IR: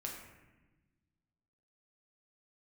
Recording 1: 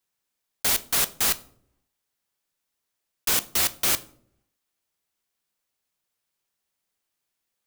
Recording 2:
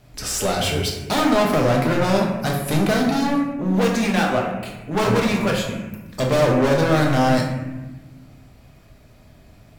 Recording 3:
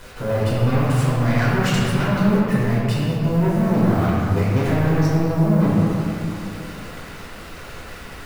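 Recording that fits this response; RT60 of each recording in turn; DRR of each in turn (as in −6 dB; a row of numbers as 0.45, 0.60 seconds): 2; non-exponential decay, 1.1 s, 2.8 s; 13.5, −1.5, −9.0 decibels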